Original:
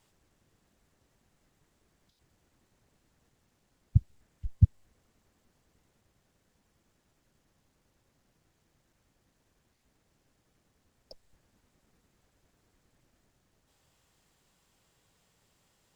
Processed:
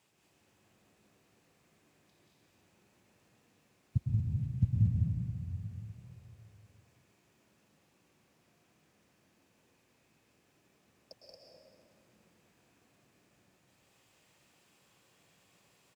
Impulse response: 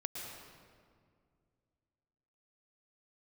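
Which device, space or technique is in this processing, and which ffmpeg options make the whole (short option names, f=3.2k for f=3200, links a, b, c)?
stadium PA: -filter_complex "[0:a]highpass=130,equalizer=f=2.5k:t=o:w=0.33:g=6.5,aecho=1:1:180.8|227.4:0.708|0.708[a];[1:a]atrim=start_sample=2205[b];[a][b]afir=irnorm=-1:irlink=0"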